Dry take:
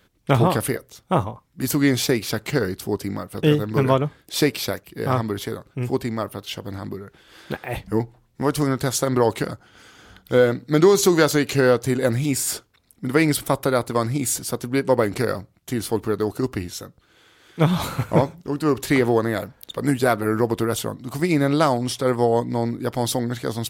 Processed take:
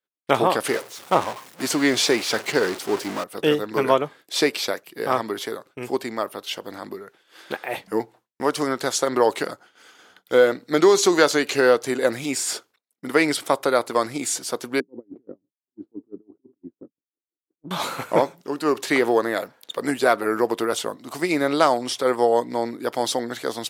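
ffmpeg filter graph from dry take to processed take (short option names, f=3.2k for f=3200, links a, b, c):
-filter_complex "[0:a]asettb=1/sr,asplit=3[a][b][c];[a]atrim=end=0.634[d];[b]atrim=start=0.63:end=3.24,asetpts=PTS-STARTPTS,afade=t=in:d=0.004:c=qsin,afade=t=out:st=2.606:d=0.004:c=qsin,aeval=exprs='val(0)+0.5*0.0631*sgn(val(0))':c=same,agate=range=-33dB:threshold=-23dB:ratio=3:release=100:detection=peak[e];[c]atrim=start=3.236[f];[d][e]acrossfade=d=0.004:c1=hsin:c2=qsin[g];[g][f]acrossfade=d=0.004:c1=qsin:c2=hsin,asettb=1/sr,asplit=3[h][i][j];[h]atrim=end=14.804[k];[i]atrim=start=14.8:end=17.71,asetpts=PTS-STARTPTS,afade=t=in:d=0.004:c=qsin,afade=t=out:st=2.906:d=0.004:c=qsin,acompressor=threshold=-30dB:ratio=2:attack=3.2:release=140:knee=1:detection=peak,lowpass=f=290:t=q:w=3,aeval=exprs='val(0)*pow(10,-35*(0.5-0.5*cos(2*PI*5.9*n/s))/20)':c=same[l];[j]atrim=start=17.706[m];[k][l]acrossfade=d=0.004:c1=hsin:c2=qsin[n];[n][m]acrossfade=d=0.004:c1=qsin:c2=hsin,highpass=370,agate=range=-33dB:threshold=-44dB:ratio=3:detection=peak,acrossover=split=8800[o][p];[p]acompressor=threshold=-45dB:ratio=4:attack=1:release=60[q];[o][q]amix=inputs=2:normalize=0,volume=2dB"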